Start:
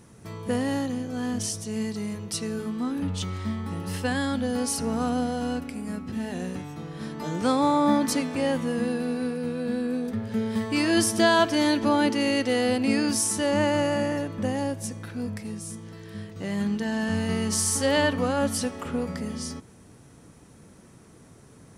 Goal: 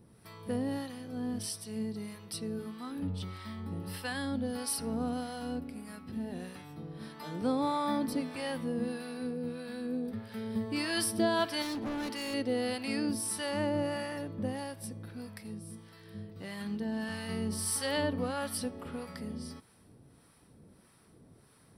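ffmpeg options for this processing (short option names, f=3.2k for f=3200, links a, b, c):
-filter_complex "[0:a]aexciter=amount=1.1:drive=2.2:freq=3.7k,acrossover=split=730[a][b];[a]aeval=exprs='val(0)*(1-0.7/2+0.7/2*cos(2*PI*1.6*n/s))':c=same[c];[b]aeval=exprs='val(0)*(1-0.7/2-0.7/2*cos(2*PI*1.6*n/s))':c=same[d];[c][d]amix=inputs=2:normalize=0,asettb=1/sr,asplit=3[e][f][g];[e]atrim=end=11.624[h];[f]atrim=start=11.62:end=12.34,asetpts=PTS-STARTPTS,afade=t=in:d=0.004:c=qsin,afade=t=out:st=0.716:d=0.004:c=qsin,asoftclip=type=hard:threshold=-28dB[i];[g]atrim=start=12.336[j];[h][i]acrossfade=d=0.004:c1=hsin:c2=qsin[k];[k][j]acrossfade=d=0.004:c1=qsin:c2=hsin,volume=-5.5dB"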